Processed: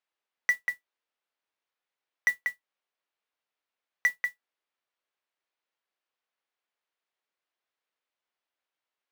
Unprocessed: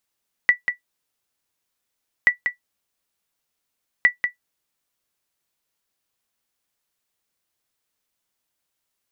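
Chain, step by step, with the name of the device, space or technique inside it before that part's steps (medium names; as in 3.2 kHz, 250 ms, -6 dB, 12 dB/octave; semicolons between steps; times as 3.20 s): carbon microphone (band-pass 410–3100 Hz; saturation -11.5 dBFS, distortion -14 dB; modulation noise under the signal 22 dB); trim -4 dB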